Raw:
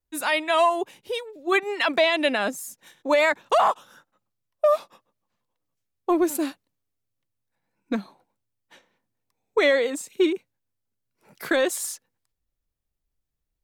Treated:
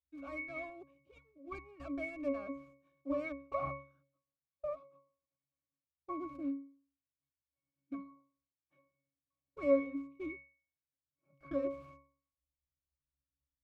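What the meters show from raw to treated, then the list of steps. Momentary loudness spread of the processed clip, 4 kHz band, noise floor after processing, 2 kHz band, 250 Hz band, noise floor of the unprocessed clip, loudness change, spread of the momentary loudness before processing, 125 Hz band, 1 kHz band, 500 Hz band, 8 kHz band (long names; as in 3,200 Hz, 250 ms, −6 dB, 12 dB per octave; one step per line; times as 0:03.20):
18 LU, below −35 dB, below −85 dBFS, −21.5 dB, −12.0 dB, −81 dBFS, −16.5 dB, 13 LU, can't be measured, −21.5 dB, −15.5 dB, below −40 dB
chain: stylus tracing distortion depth 0.29 ms
floating-point word with a short mantissa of 2 bits
resonances in every octave C#, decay 0.44 s
level +1.5 dB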